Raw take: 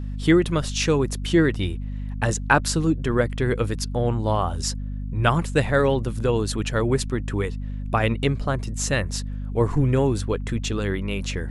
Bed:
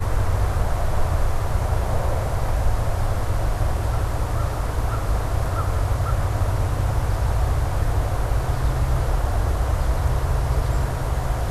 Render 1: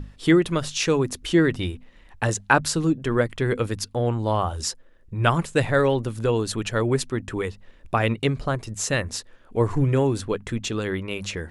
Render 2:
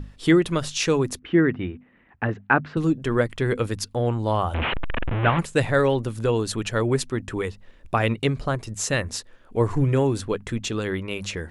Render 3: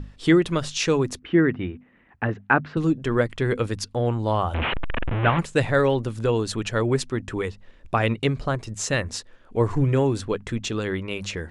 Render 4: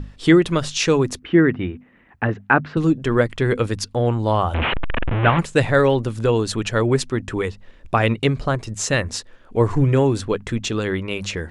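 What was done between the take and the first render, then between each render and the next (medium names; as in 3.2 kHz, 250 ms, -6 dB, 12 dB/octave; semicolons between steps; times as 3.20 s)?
hum notches 50/100/150/200/250 Hz
1.19–2.77 s: cabinet simulation 110–2300 Hz, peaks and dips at 240 Hz +4 dB, 550 Hz -5 dB, 950 Hz -4 dB; 4.54–5.39 s: one-bit delta coder 16 kbps, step -17.5 dBFS
low-pass 8.4 kHz 12 dB/octave
trim +4 dB; peak limiter -1 dBFS, peak gain reduction 1 dB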